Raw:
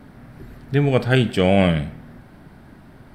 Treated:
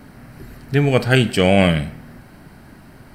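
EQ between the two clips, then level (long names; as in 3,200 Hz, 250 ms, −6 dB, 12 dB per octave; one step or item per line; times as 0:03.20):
high-shelf EQ 2,600 Hz +8.5 dB
notch filter 3,500 Hz, Q 7.1
+1.5 dB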